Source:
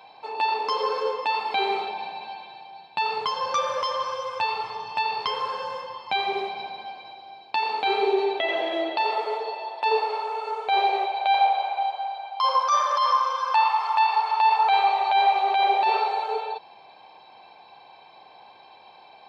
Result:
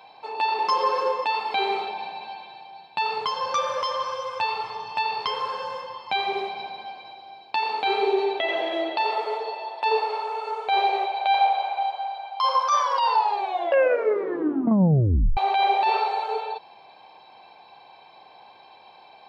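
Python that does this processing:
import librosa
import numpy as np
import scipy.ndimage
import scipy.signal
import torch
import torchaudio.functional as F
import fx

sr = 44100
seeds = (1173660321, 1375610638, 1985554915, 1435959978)

y = fx.comb(x, sr, ms=5.6, depth=0.89, at=(0.58, 1.24))
y = fx.edit(y, sr, fx.tape_stop(start_s=12.76, length_s=2.61), tone=tone)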